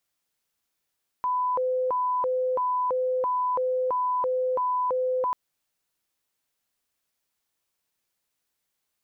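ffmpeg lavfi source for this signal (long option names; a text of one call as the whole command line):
ffmpeg -f lavfi -i "aevalsrc='0.075*sin(2*PI*(754.5*t+244.5/1.5*(0.5-abs(mod(1.5*t,1)-0.5))))':duration=4.09:sample_rate=44100" out.wav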